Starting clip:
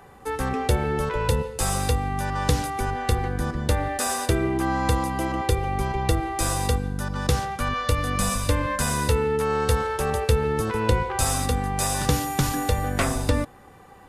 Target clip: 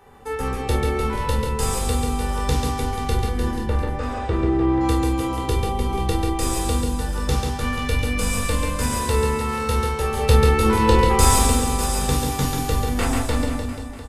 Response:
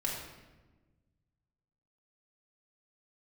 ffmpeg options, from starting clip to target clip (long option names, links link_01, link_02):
-filter_complex "[0:a]asettb=1/sr,asplit=3[link_01][link_02][link_03];[link_01]atrim=end=3.594[link_04];[link_02]atrim=start=3.59:end=4.81,asetpts=PTS-STARTPTS,afade=type=in:duration=0.004:curve=qsin,afade=type=out:start_time=1.216:duration=0.004:curve=qsin,lowpass=2100[link_05];[link_03]atrim=start=4.806[link_06];[link_04][link_05]acrossfade=duration=0.004:curve1=hsin:curve2=qsin[link_07];[link_07][link_06]acrossfade=duration=0.004:curve1=qsin:curve2=hsin,asplit=3[link_08][link_09][link_10];[link_08]afade=type=out:start_time=10.16:duration=0.02[link_11];[link_09]acontrast=66,afade=type=in:start_time=10.16:duration=0.02,afade=type=out:start_time=11.45:duration=0.02[link_12];[link_10]afade=type=in:start_time=11.45:duration=0.02[link_13];[link_11][link_12][link_13]amix=inputs=3:normalize=0,aecho=1:1:140|301|486.2|699.1|943.9:0.631|0.398|0.251|0.158|0.1[link_14];[1:a]atrim=start_sample=2205,atrim=end_sample=4410,asetrate=70560,aresample=44100[link_15];[link_14][link_15]afir=irnorm=-1:irlink=0"